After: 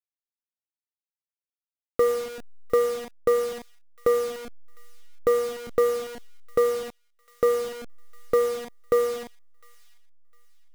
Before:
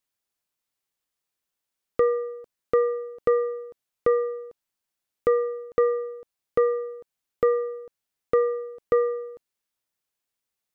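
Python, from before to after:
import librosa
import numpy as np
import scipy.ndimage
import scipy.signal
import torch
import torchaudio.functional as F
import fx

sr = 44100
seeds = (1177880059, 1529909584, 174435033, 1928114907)

y = fx.delta_hold(x, sr, step_db=-31.5)
y = fx.echo_wet_highpass(y, sr, ms=705, feedback_pct=32, hz=2000.0, wet_db=-19.5)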